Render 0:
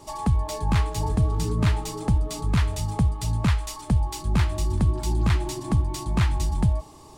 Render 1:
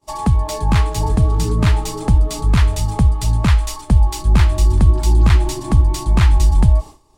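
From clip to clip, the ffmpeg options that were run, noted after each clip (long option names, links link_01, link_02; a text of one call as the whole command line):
ffmpeg -i in.wav -af "agate=range=-33dB:threshold=-35dB:ratio=3:detection=peak,asubboost=boost=3:cutoff=65,volume=7dB" out.wav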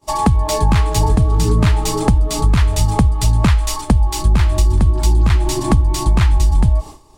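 ffmpeg -i in.wav -af "acompressor=threshold=-17dB:ratio=6,volume=7.5dB" out.wav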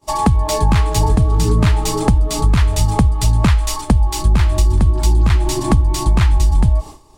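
ffmpeg -i in.wav -af anull out.wav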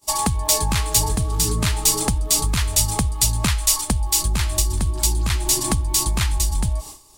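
ffmpeg -i in.wav -af "crystalizer=i=6.5:c=0,volume=-9dB" out.wav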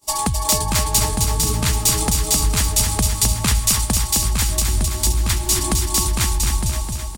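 ffmpeg -i in.wav -af "aecho=1:1:261|522|783|1044|1305|1566|1827|2088:0.562|0.337|0.202|0.121|0.0729|0.0437|0.0262|0.0157" out.wav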